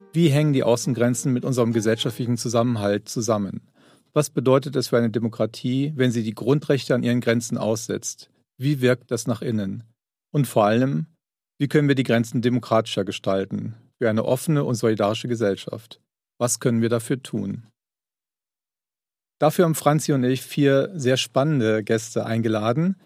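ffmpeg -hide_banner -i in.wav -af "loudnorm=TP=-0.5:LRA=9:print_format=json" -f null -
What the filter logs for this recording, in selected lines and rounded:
"input_i" : "-22.2",
"input_tp" : "-5.0",
"input_lra" : "3.9",
"input_thresh" : "-32.5",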